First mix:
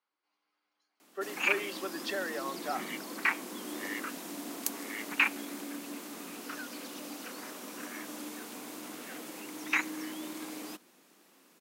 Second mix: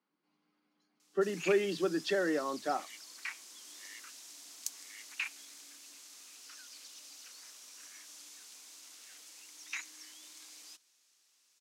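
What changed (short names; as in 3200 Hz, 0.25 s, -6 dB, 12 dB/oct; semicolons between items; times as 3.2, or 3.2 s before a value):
speech: remove HPF 620 Hz 12 dB/oct; background: add band-pass 5900 Hz, Q 1.5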